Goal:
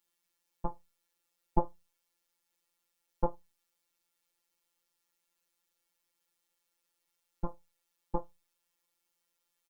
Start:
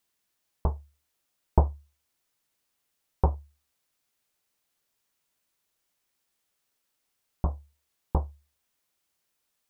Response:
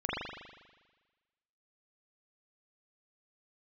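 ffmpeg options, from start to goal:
-af "aecho=1:1:3.6:0.7,afftfilt=real='hypot(re,im)*cos(PI*b)':imag='0':win_size=1024:overlap=0.75,volume=-1.5dB"

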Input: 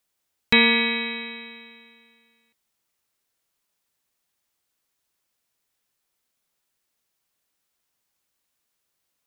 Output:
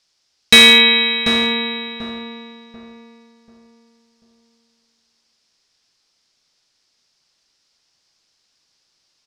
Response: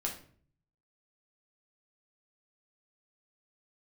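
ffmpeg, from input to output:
-filter_complex "[0:a]lowpass=frequency=5100:width_type=q:width=3.7,highshelf=frequency=3400:gain=4,volume=9.5dB,asoftclip=hard,volume=-9.5dB,asplit=2[link_01][link_02];[link_02]adelay=739,lowpass=frequency=1300:poles=1,volume=-3dB,asplit=2[link_03][link_04];[link_04]adelay=739,lowpass=frequency=1300:poles=1,volume=0.35,asplit=2[link_05][link_06];[link_06]adelay=739,lowpass=frequency=1300:poles=1,volume=0.35,asplit=2[link_07][link_08];[link_08]adelay=739,lowpass=frequency=1300:poles=1,volume=0.35,asplit=2[link_09][link_10];[link_10]adelay=739,lowpass=frequency=1300:poles=1,volume=0.35[link_11];[link_01][link_03][link_05][link_07][link_09][link_11]amix=inputs=6:normalize=0,asplit=2[link_12][link_13];[1:a]atrim=start_sample=2205[link_14];[link_13][link_14]afir=irnorm=-1:irlink=0,volume=-20.5dB[link_15];[link_12][link_15]amix=inputs=2:normalize=0,volume=6.5dB"

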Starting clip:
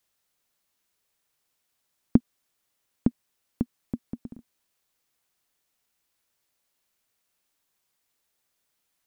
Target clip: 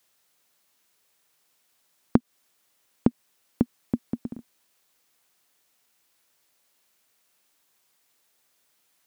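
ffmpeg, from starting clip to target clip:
ffmpeg -i in.wav -af "highpass=frequency=170:poles=1,acompressor=threshold=-23dB:ratio=6,volume=8dB" out.wav

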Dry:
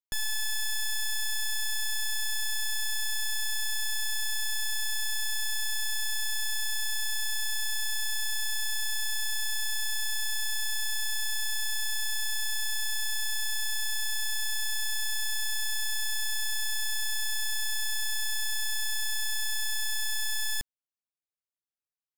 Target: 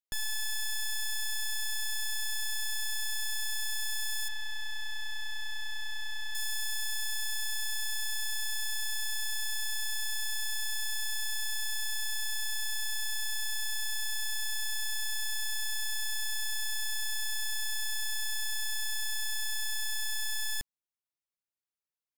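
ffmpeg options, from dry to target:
ffmpeg -i in.wav -filter_complex "[0:a]asettb=1/sr,asplit=3[link_01][link_02][link_03];[link_01]atrim=end=4.284[link_04];[link_02]atrim=start=4.28:end=6.35,asetpts=PTS-STARTPTS,afade=type=in:duration=0.004:curve=qsin,afade=type=out:start_time=2.066:duration=0.004:curve=qsin,acrossover=split=4400[link_05][link_06];[link_06]acompressor=threshold=-49dB:ratio=4:attack=1:release=60[link_07];[link_05][link_07]amix=inputs=2:normalize=0[link_08];[link_03]atrim=start=6.346[link_09];[link_04][link_08]acrossfade=duration=0.004:curve1=hsin:curve2=qsin[link_10];[link_10][link_09]acrossfade=duration=0.004:curve1=qsin:curve2=hsin,volume=-3dB" out.wav

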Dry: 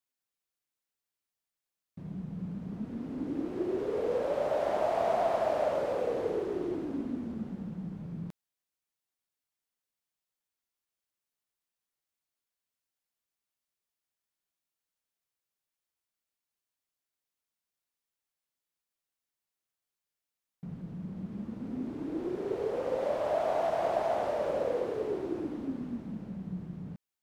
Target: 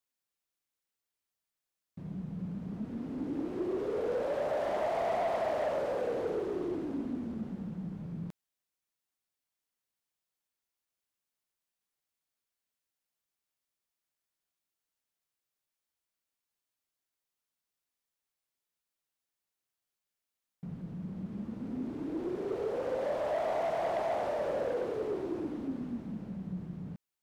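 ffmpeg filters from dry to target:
ffmpeg -i in.wav -af "asoftclip=type=tanh:threshold=-25.5dB" out.wav

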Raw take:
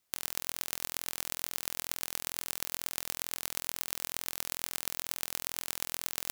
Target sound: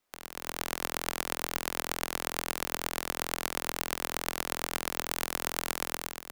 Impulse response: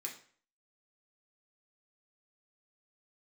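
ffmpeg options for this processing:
-filter_complex "[0:a]asetnsamples=nb_out_samples=441:pad=0,asendcmd='5.13 highshelf g -6.5',highshelf=frequency=2500:gain=-12,acrossover=split=280|1900[link_01][link_02][link_03];[link_01]acompressor=threshold=-55dB:ratio=4[link_04];[link_02]acompressor=threshold=-52dB:ratio=4[link_05];[link_03]acompressor=threshold=-50dB:ratio=4[link_06];[link_04][link_05][link_06]amix=inputs=3:normalize=0,equalizer=frequency=110:width=1.2:gain=-14.5,dynaudnorm=framelen=100:gausssize=9:maxgain=13.5dB,volume=6dB"

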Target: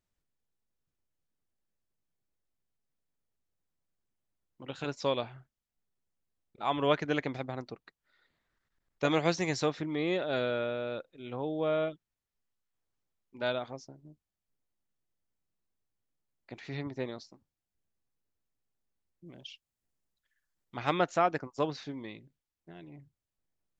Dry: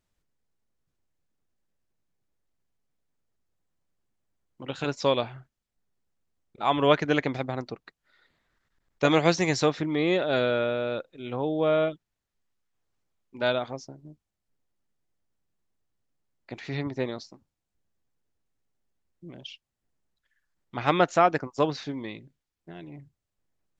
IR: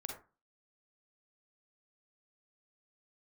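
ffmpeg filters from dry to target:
-filter_complex "[0:a]asettb=1/sr,asplit=3[link_01][link_02][link_03];[link_01]atrim=end=19.264[link_04];[link_02]atrim=start=19.26:end=20.95,asetpts=PTS-STARTPTS,afade=type=in:duration=0.004:curve=qsin,afade=type=out:start_time=1.686:duration=0.004:curve=qsin,highshelf=frequency=5400:gain=7[link_05];[link_03]atrim=start=20.946[link_06];[link_04][link_05]acrossfade=duration=0.004:curve1=hsin:curve2=qsin[link_07];[link_07][link_06]acrossfade=duration=0.004:curve1=qsin:curve2=hsin,volume=-6.5dB"

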